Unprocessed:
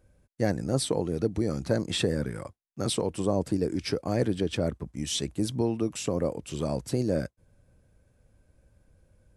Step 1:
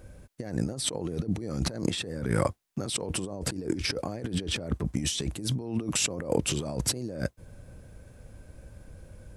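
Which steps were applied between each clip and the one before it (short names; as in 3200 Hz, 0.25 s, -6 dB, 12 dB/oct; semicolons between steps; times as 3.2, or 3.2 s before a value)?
negative-ratio compressor -38 dBFS, ratio -1; gain +6 dB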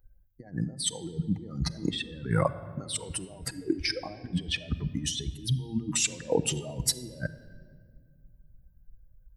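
per-bin expansion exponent 2; reverb RT60 1.9 s, pre-delay 6 ms, DRR 11 dB; gain +4 dB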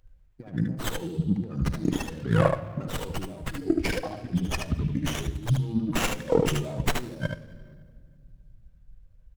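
echo 75 ms -4.5 dB; running maximum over 9 samples; gain +3.5 dB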